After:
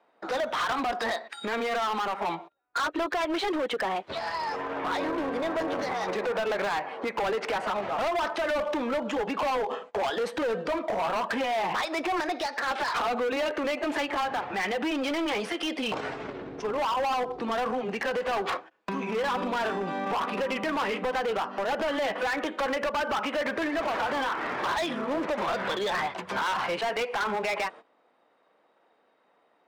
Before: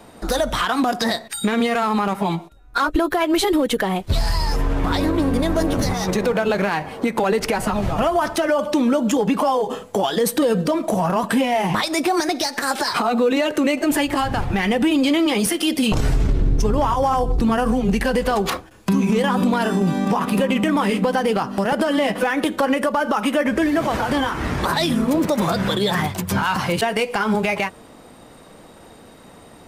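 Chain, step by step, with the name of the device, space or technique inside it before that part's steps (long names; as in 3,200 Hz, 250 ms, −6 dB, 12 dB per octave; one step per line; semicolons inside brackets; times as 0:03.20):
walkie-talkie (band-pass filter 510–2,500 Hz; hard clipping −23.5 dBFS, distortion −8 dB; noise gate −42 dBFS, range −16 dB)
level −1.5 dB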